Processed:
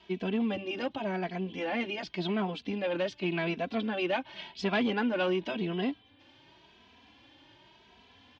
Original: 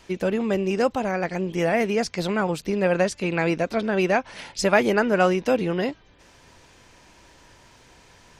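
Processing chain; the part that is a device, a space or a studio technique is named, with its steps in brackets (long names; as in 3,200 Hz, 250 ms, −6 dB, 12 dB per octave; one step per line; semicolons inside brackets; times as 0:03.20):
barber-pole flanger into a guitar amplifier (barber-pole flanger 2.7 ms +0.9 Hz; soft clipping −18 dBFS, distortion −16 dB; loudspeaker in its box 92–4,100 Hz, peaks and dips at 150 Hz −8 dB, 270 Hz +5 dB, 490 Hz −8 dB, 1,300 Hz −6 dB, 1,900 Hz −4 dB, 3,200 Hz +8 dB)
level −2 dB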